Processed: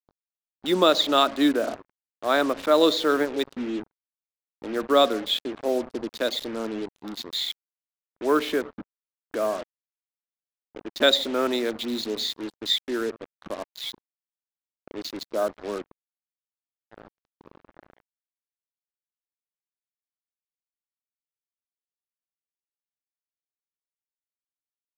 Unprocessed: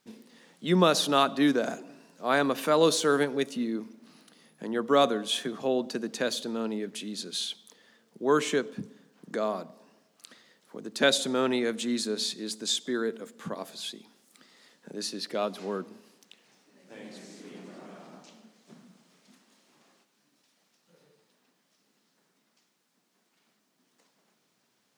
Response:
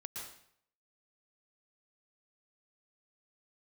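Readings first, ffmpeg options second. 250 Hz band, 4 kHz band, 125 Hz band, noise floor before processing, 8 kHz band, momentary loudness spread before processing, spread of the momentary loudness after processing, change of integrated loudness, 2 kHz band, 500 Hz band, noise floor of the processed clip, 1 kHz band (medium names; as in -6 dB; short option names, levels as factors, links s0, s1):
+1.5 dB, +5.0 dB, -8.0 dB, -73 dBFS, -5.5 dB, 22 LU, 16 LU, +3.0 dB, +1.5 dB, +3.0 dB, under -85 dBFS, +2.5 dB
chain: -af "highpass=170,equalizer=f=170:t=q:w=4:g=-9,equalizer=f=320:t=q:w=4:g=6,equalizer=f=610:t=q:w=4:g=6,equalizer=f=1300:t=q:w=4:g=4,equalizer=f=3700:t=q:w=4:g=8,lowpass=f=4800:w=0.5412,lowpass=f=4800:w=1.3066,afwtdn=0.0178,acrusher=bits=5:mix=0:aa=0.5"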